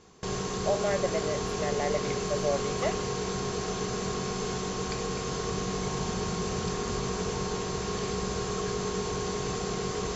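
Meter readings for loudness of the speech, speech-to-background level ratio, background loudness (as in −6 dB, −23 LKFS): −32.5 LKFS, −1.0 dB, −31.5 LKFS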